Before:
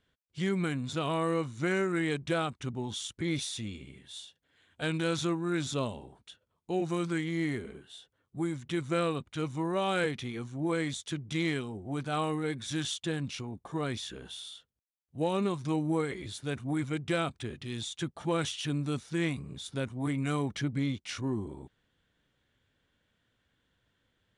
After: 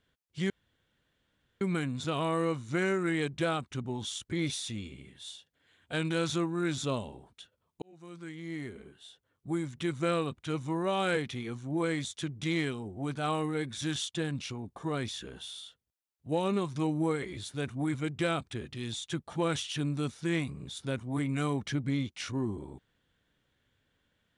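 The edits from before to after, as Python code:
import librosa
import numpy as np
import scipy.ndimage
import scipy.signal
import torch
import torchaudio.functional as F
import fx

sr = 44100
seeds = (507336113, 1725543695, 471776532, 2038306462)

y = fx.edit(x, sr, fx.insert_room_tone(at_s=0.5, length_s=1.11),
    fx.fade_in_span(start_s=6.71, length_s=1.68), tone=tone)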